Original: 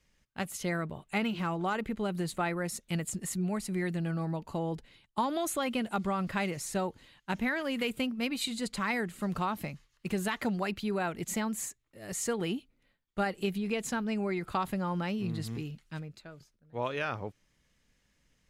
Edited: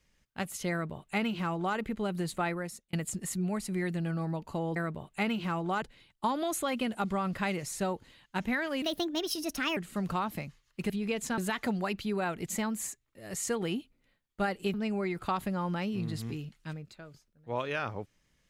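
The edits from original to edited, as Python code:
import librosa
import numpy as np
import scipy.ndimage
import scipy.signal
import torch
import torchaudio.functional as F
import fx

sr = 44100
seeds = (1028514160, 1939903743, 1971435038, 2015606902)

y = fx.edit(x, sr, fx.duplicate(start_s=0.71, length_s=1.06, to_s=4.76),
    fx.fade_out_span(start_s=2.5, length_s=0.43),
    fx.speed_span(start_s=7.76, length_s=1.27, speed=1.34),
    fx.move(start_s=13.52, length_s=0.48, to_s=10.16), tone=tone)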